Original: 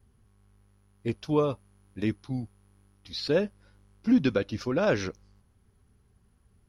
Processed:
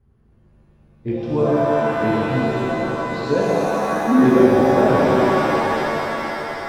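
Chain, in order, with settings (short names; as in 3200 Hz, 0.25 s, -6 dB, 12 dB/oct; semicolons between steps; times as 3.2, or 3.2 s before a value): LPF 1000 Hz 6 dB/oct; shimmer reverb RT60 3.8 s, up +7 st, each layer -2 dB, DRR -6.5 dB; gain +2.5 dB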